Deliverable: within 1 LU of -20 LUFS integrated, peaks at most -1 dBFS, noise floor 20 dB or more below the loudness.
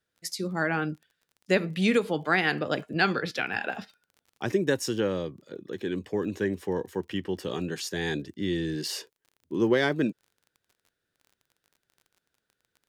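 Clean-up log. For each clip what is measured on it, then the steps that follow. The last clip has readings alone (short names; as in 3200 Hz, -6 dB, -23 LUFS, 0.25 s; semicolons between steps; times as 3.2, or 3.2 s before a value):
ticks 29/s; loudness -28.5 LUFS; peak -8.5 dBFS; loudness target -20.0 LUFS
-> de-click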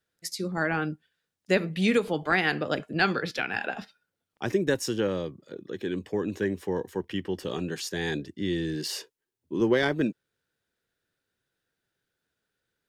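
ticks 0.078/s; loudness -28.5 LUFS; peak -8.5 dBFS; loudness target -20.0 LUFS
-> gain +8.5 dB; limiter -1 dBFS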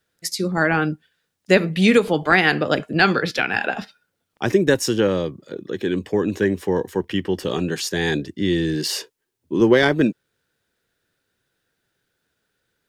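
loudness -20.5 LUFS; peak -1.0 dBFS; noise floor -77 dBFS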